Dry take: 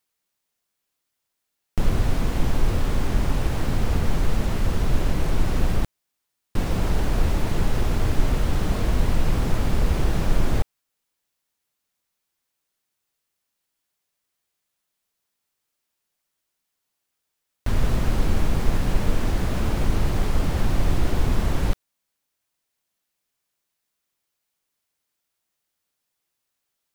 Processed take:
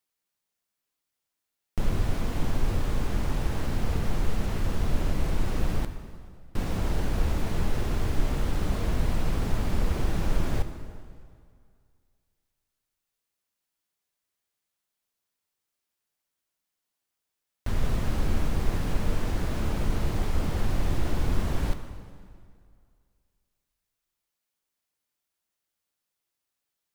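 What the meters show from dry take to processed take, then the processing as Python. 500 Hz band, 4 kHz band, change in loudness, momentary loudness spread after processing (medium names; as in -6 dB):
-5.0 dB, -5.0 dB, -5.0 dB, 8 LU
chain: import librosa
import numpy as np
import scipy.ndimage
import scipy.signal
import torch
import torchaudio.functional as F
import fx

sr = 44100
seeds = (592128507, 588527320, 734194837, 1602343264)

y = fx.rev_plate(x, sr, seeds[0], rt60_s=2.2, hf_ratio=0.8, predelay_ms=0, drr_db=8.0)
y = F.gain(torch.from_numpy(y), -5.5).numpy()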